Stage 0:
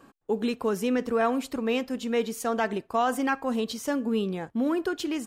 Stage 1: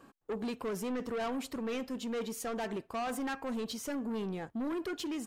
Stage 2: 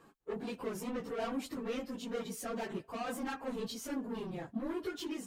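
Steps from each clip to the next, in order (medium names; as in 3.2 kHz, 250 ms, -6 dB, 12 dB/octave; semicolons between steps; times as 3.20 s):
saturation -28.5 dBFS, distortion -8 dB; trim -3.5 dB
phase randomisation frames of 50 ms; trim -2.5 dB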